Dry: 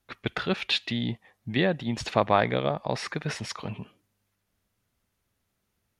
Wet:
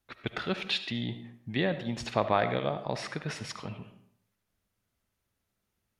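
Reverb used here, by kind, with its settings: digital reverb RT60 0.65 s, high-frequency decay 0.65×, pre-delay 30 ms, DRR 10 dB; gain -4.5 dB

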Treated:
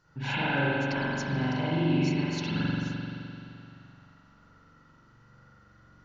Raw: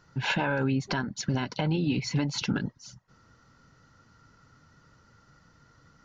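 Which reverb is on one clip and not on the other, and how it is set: spring tank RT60 2.8 s, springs 43 ms, chirp 70 ms, DRR -9 dB; gain -8 dB

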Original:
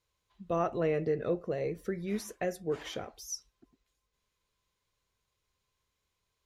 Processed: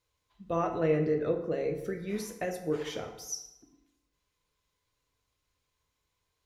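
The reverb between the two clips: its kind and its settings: FDN reverb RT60 0.9 s, low-frequency decay 1.05×, high-frequency decay 0.7×, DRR 4 dB

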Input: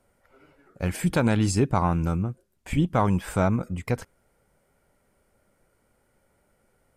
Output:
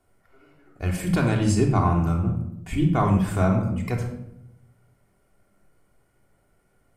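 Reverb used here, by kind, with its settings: shoebox room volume 2200 m³, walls furnished, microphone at 3.3 m; gain -3 dB

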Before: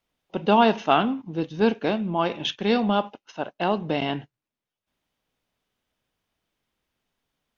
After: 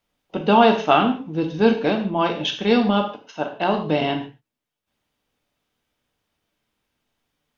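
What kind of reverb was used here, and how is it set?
non-linear reverb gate 0.18 s falling, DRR 3 dB; gain +2 dB

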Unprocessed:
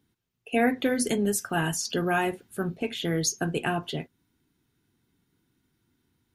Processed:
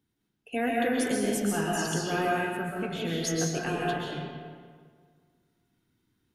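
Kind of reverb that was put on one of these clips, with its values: digital reverb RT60 1.8 s, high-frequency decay 0.65×, pre-delay 95 ms, DRR -4 dB; gain -6.5 dB

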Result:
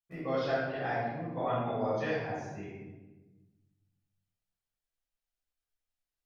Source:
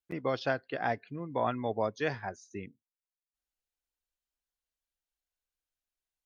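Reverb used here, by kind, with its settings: shoebox room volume 660 m³, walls mixed, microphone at 6.2 m; gain -13 dB

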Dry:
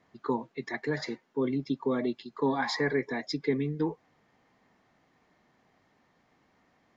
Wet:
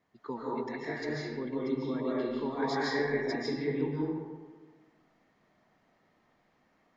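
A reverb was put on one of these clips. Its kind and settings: digital reverb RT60 1.4 s, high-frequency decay 0.55×, pre-delay 0.105 s, DRR -6.5 dB; gain -9 dB

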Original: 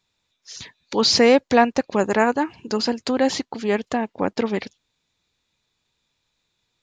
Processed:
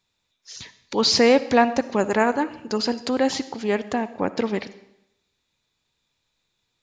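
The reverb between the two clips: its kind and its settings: digital reverb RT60 0.82 s, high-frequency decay 0.95×, pre-delay 20 ms, DRR 14.5 dB; gain -1.5 dB

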